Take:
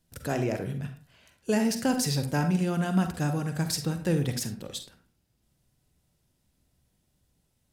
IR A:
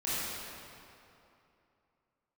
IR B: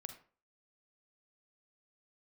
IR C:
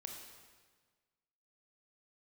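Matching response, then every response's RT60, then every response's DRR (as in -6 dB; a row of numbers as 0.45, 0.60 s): B; 2.8, 0.40, 1.5 s; -11.5, 7.0, 1.5 dB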